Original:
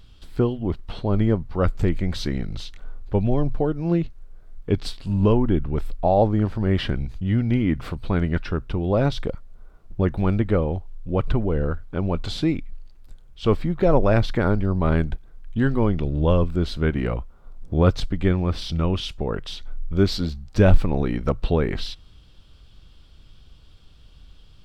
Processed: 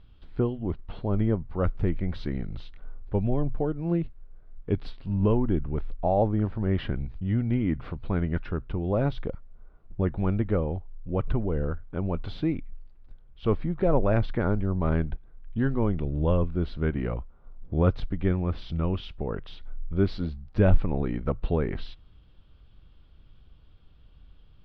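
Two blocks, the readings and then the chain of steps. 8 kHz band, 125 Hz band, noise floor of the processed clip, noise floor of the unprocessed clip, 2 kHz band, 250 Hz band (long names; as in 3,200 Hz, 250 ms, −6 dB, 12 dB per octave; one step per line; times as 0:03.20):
can't be measured, −4.5 dB, −53 dBFS, −49 dBFS, −7.5 dB, −5.0 dB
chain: high-frequency loss of the air 340 metres
level −4.5 dB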